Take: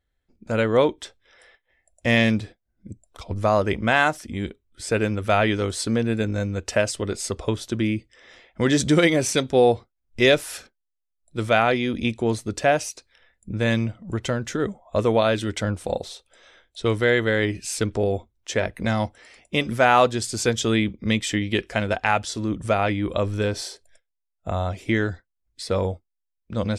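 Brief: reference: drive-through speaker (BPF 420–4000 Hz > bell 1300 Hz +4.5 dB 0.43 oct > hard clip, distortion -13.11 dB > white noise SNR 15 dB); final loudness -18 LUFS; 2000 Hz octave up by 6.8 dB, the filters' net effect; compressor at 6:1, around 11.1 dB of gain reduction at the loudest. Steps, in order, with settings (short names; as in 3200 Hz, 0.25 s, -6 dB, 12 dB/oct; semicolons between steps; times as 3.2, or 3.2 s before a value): bell 2000 Hz +7.5 dB; compressor 6:1, threshold -22 dBFS; BPF 420–4000 Hz; bell 1300 Hz +4.5 dB 0.43 oct; hard clip -19.5 dBFS; white noise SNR 15 dB; gain +12.5 dB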